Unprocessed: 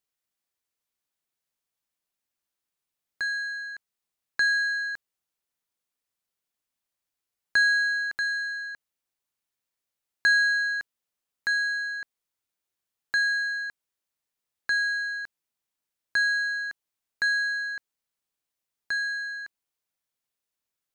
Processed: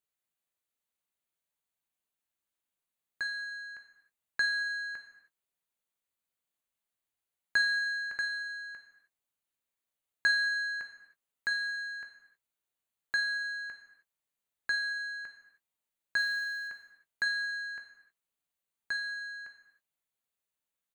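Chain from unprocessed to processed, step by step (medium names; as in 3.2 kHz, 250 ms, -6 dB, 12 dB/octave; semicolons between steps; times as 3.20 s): peaking EQ 5.3 kHz -13 dB 0.22 oct; doubling 18 ms -11.5 dB; 16.17–16.68 s: short-mantissa float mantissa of 4-bit; gated-style reverb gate 340 ms falling, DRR 5 dB; trim -4.5 dB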